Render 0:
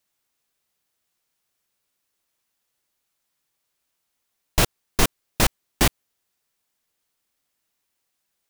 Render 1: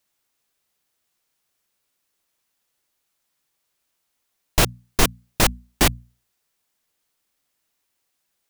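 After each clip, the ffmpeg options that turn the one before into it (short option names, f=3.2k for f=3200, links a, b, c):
-af "bandreject=f=60:t=h:w=6,bandreject=f=120:t=h:w=6,bandreject=f=180:t=h:w=6,bandreject=f=240:t=h:w=6,volume=2dB"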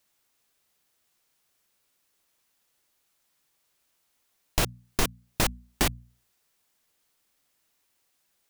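-af "acompressor=threshold=-31dB:ratio=2,volume=2dB"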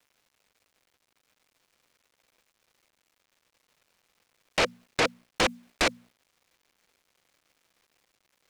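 -af "highpass=f=250:w=0.5412,highpass=f=250:w=1.3066,equalizer=f=510:t=q:w=4:g=9,equalizer=f=2.3k:t=q:w=4:g=7,equalizer=f=3.4k:t=q:w=4:g=-6,lowpass=f=3.8k:w=0.5412,lowpass=f=3.8k:w=1.3066,acrusher=bits=11:mix=0:aa=0.000001,aeval=exprs='0.282*sin(PI/2*4.47*val(0)/0.282)':c=same,volume=-7.5dB"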